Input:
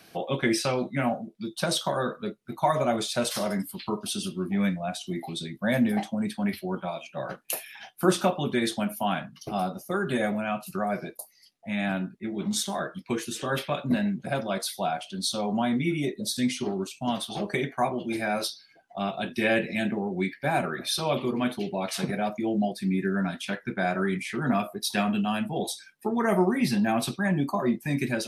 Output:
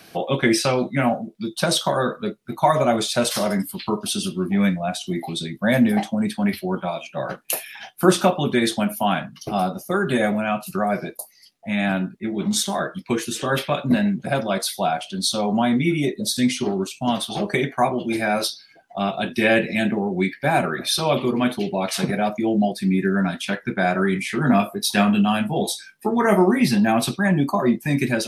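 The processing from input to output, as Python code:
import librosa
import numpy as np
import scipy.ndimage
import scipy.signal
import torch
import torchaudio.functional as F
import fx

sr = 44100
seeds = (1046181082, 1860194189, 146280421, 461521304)

y = fx.doubler(x, sr, ms=20.0, db=-7.5, at=(24.14, 26.63))
y = y * 10.0 ** (6.5 / 20.0)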